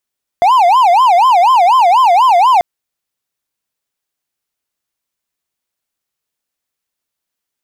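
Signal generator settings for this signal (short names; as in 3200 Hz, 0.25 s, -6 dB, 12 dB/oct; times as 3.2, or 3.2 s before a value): siren wail 687–1050 Hz 4.1/s triangle -3.5 dBFS 2.19 s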